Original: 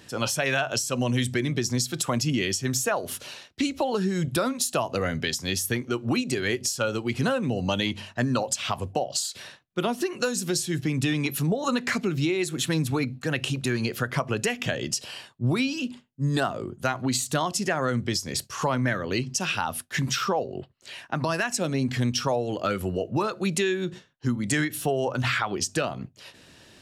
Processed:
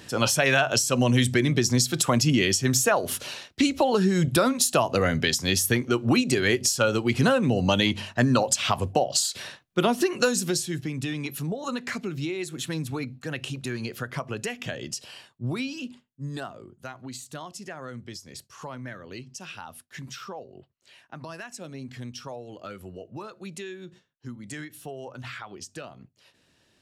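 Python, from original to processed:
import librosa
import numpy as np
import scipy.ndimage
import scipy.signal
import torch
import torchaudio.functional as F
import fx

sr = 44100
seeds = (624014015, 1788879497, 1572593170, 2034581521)

y = fx.gain(x, sr, db=fx.line((10.28, 4.0), (10.92, -5.5), (15.89, -5.5), (16.72, -13.0)))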